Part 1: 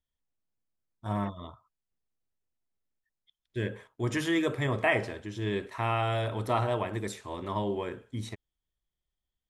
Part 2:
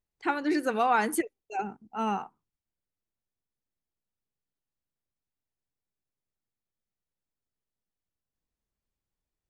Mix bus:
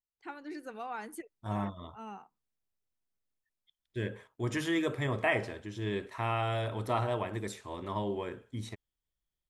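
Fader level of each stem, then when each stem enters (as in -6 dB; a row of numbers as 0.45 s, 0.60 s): -3.0 dB, -15.5 dB; 0.40 s, 0.00 s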